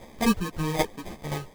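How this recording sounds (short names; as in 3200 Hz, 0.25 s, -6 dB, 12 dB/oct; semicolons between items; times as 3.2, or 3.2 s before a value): a quantiser's noise floor 8-bit, dither triangular; tremolo saw down 3.8 Hz, depth 65%; aliases and images of a low sample rate 1400 Hz, jitter 0%; a shimmering, thickened sound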